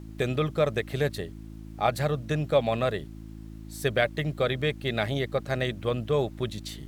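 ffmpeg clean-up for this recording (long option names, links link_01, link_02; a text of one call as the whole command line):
ffmpeg -i in.wav -af "bandreject=frequency=54:width_type=h:width=4,bandreject=frequency=108:width_type=h:width=4,bandreject=frequency=162:width_type=h:width=4,bandreject=frequency=216:width_type=h:width=4,bandreject=frequency=270:width_type=h:width=4,bandreject=frequency=324:width_type=h:width=4,agate=range=-21dB:threshold=-34dB" out.wav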